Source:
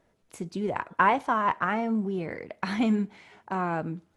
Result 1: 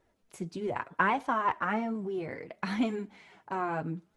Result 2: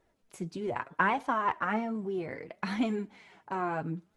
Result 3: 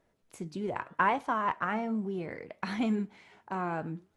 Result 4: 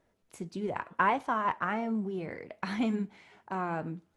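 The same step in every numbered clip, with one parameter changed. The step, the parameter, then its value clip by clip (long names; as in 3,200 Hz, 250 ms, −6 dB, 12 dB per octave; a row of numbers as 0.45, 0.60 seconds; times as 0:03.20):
flanger, regen: −15, +24, +87, −85%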